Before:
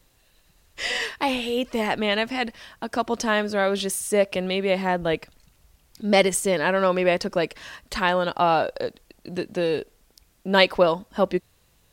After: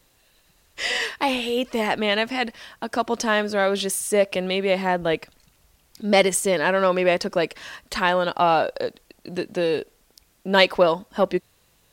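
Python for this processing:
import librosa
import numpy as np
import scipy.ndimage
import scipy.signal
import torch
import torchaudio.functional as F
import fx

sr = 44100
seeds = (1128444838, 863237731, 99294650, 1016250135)

p1 = fx.low_shelf(x, sr, hz=130.0, db=-7.0)
p2 = 10.0 ** (-16.5 / 20.0) * np.tanh(p1 / 10.0 ** (-16.5 / 20.0))
y = p1 + F.gain(torch.from_numpy(p2), -11.0).numpy()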